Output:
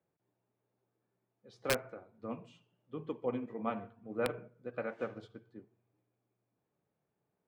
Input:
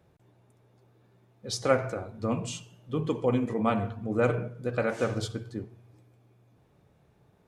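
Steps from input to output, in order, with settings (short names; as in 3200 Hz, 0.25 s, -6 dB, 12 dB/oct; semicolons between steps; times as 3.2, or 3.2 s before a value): three-band isolator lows -14 dB, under 150 Hz, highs -21 dB, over 3400 Hz; wrapped overs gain 13 dB; upward expander 1.5:1, over -42 dBFS; gain -7 dB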